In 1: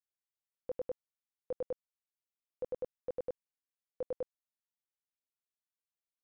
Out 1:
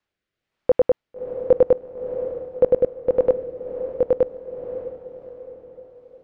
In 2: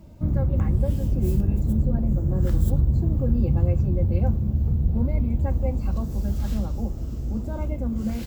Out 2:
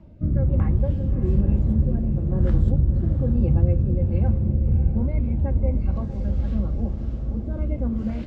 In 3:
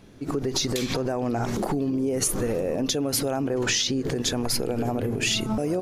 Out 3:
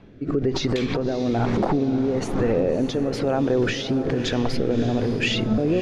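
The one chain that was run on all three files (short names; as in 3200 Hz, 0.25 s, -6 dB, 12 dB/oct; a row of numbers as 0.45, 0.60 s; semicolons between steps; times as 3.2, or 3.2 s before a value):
LPF 2800 Hz 12 dB/oct; rotary speaker horn 1.1 Hz; diffused feedback echo 0.61 s, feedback 47%, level -10 dB; match loudness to -23 LUFS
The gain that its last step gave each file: +23.5, +2.0, +5.5 dB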